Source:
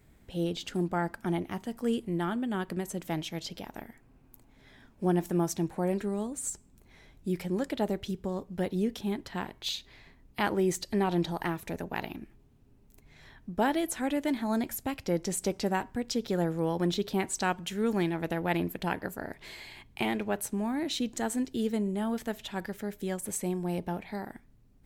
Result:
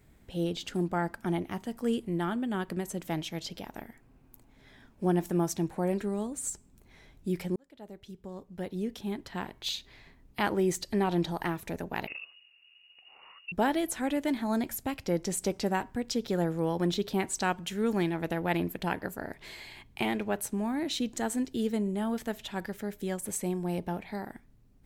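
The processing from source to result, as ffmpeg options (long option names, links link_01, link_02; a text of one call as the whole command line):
ffmpeg -i in.wav -filter_complex "[0:a]asettb=1/sr,asplit=3[link_01][link_02][link_03];[link_01]atrim=end=12.074[link_04];[link_02]atrim=start=12.07:end=13.52,asetpts=PTS-STARTPTS,afade=type=in:duration=0.004:curve=qsin,afade=type=out:start_time=1.446:duration=0.004:curve=qsin,lowpass=frequency=2500:width_type=q:width=0.5098,lowpass=frequency=2500:width_type=q:width=0.6013,lowpass=frequency=2500:width_type=q:width=0.9,lowpass=frequency=2500:width_type=q:width=2.563,afreqshift=-2900[link_05];[link_03]atrim=start=13.516[link_06];[link_04][link_05]acrossfade=duration=0.004:curve1=hsin:curve2=qsin[link_07];[link_07][link_06]acrossfade=duration=0.004:curve1=qsin:curve2=hsin,asplit=2[link_08][link_09];[link_08]atrim=end=7.56,asetpts=PTS-STARTPTS,afade=type=out:start_time=7.556:duration=0.004:curve=hsin[link_10];[link_09]atrim=start=7.56,asetpts=PTS-STARTPTS,afade=type=in:duration=2.07[link_11];[link_10][link_11]concat=n=2:v=0:a=1" out.wav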